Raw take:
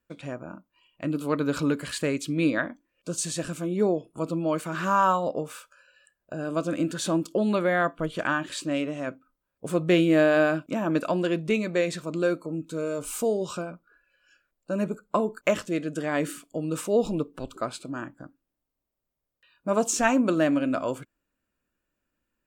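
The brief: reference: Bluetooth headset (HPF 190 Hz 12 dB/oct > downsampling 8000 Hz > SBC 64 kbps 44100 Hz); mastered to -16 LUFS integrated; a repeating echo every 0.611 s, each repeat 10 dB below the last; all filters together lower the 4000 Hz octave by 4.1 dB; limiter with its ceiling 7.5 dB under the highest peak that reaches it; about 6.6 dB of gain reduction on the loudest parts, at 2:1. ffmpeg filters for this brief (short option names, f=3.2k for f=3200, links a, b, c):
-af "equalizer=f=4k:t=o:g=-5.5,acompressor=threshold=-29dB:ratio=2,alimiter=limit=-22dB:level=0:latency=1,highpass=190,aecho=1:1:611|1222|1833|2444:0.316|0.101|0.0324|0.0104,aresample=8000,aresample=44100,volume=17.5dB" -ar 44100 -c:a sbc -b:a 64k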